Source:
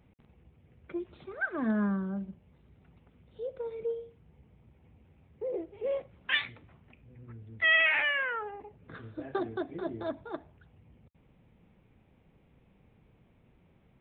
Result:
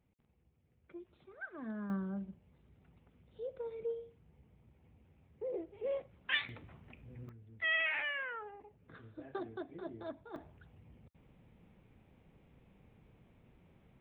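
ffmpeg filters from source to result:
ffmpeg -i in.wav -af "asetnsamples=nb_out_samples=441:pad=0,asendcmd='1.9 volume volume -5dB;6.49 volume volume 2dB;7.29 volume volume -9dB;10.36 volume volume -0.5dB',volume=-13.5dB" out.wav

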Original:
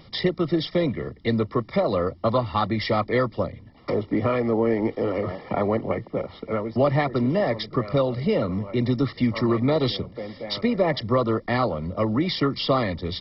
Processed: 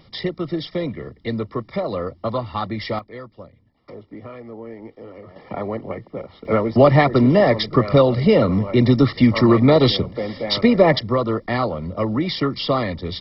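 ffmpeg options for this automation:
ffmpeg -i in.wav -af "asetnsamples=nb_out_samples=441:pad=0,asendcmd='2.99 volume volume -14dB;5.36 volume volume -3.5dB;6.45 volume volume 8dB;10.99 volume volume 1.5dB',volume=-2dB" out.wav

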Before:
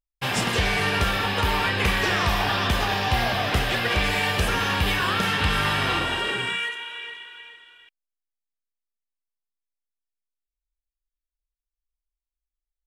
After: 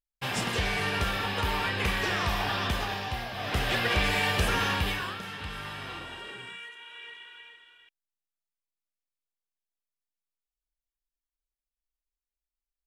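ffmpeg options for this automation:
ffmpeg -i in.wav -af "volume=14.5dB,afade=type=out:start_time=2.66:duration=0.65:silence=0.398107,afade=type=in:start_time=3.31:duration=0.42:silence=0.281838,afade=type=out:start_time=4.64:duration=0.55:silence=0.237137,afade=type=in:start_time=6.68:duration=0.61:silence=0.334965" out.wav

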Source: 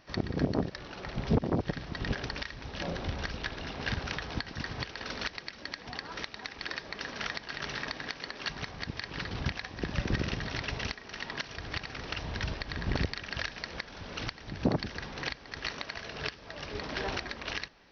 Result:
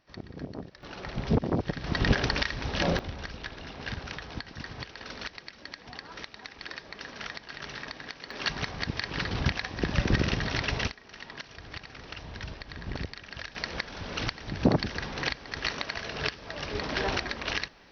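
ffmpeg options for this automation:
ffmpeg -i in.wav -af "asetnsamples=nb_out_samples=441:pad=0,asendcmd='0.83 volume volume 1.5dB;1.84 volume volume 9dB;2.99 volume volume -3dB;8.31 volume volume 5.5dB;10.88 volume volume -5dB;13.55 volume volume 5dB',volume=-10dB" out.wav

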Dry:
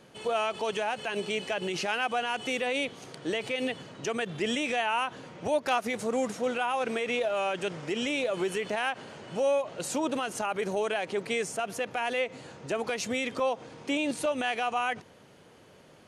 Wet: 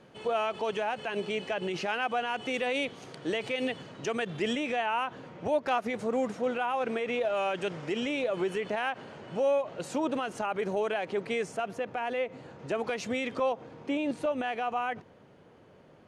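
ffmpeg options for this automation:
ffmpeg -i in.wav -af "asetnsamples=nb_out_samples=441:pad=0,asendcmd='2.54 lowpass f 4800;4.53 lowpass f 2000;7.25 lowpass f 3900;8 lowpass f 2300;11.68 lowpass f 1300;12.59 lowpass f 2700;13.52 lowpass f 1300',lowpass=frequency=2500:poles=1" out.wav

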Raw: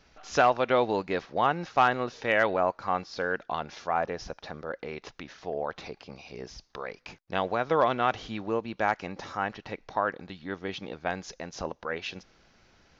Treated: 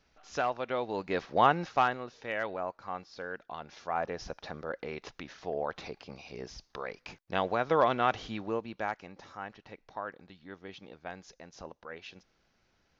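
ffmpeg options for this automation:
ffmpeg -i in.wav -af "volume=10.5dB,afade=type=in:start_time=0.88:duration=0.54:silence=0.281838,afade=type=out:start_time=1.42:duration=0.59:silence=0.251189,afade=type=in:start_time=3.56:duration=0.79:silence=0.375837,afade=type=out:start_time=8.24:duration=0.82:silence=0.334965" out.wav

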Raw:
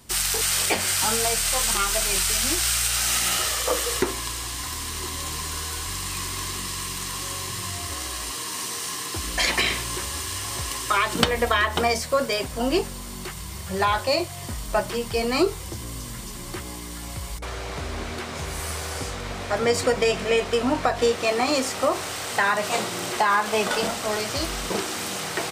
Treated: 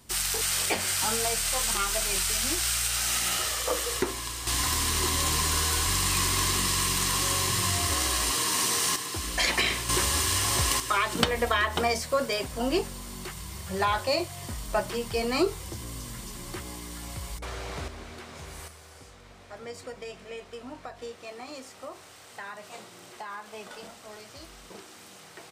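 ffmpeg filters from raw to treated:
ffmpeg -i in.wav -af "asetnsamples=nb_out_samples=441:pad=0,asendcmd='4.47 volume volume 4.5dB;8.96 volume volume -3dB;9.89 volume volume 4.5dB;10.8 volume volume -4dB;17.88 volume volume -11dB;18.68 volume volume -19dB',volume=-4.5dB" out.wav

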